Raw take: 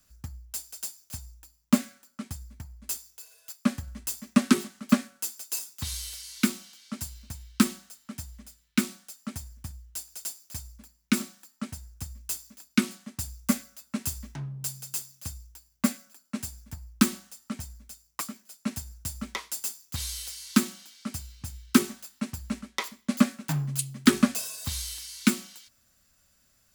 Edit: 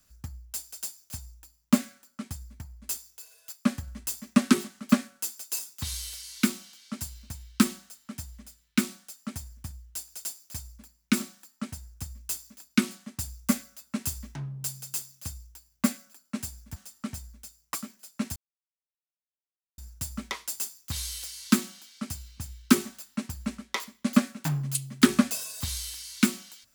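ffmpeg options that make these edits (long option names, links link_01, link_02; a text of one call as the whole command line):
ffmpeg -i in.wav -filter_complex "[0:a]asplit=3[link_01][link_02][link_03];[link_01]atrim=end=16.762[link_04];[link_02]atrim=start=17.218:end=18.82,asetpts=PTS-STARTPTS,afade=type=out:start_time=1.598:duration=0.004:curve=hsin,apad=pad_dur=1.42[link_05];[link_03]atrim=start=18.82,asetpts=PTS-STARTPTS,afade=type=in:duration=0.004:curve=hsin[link_06];[link_05][link_06]concat=n=2:v=0:a=1[link_07];[link_04][link_07]acrossfade=duration=0.004:curve1=hsin:curve2=hsin" out.wav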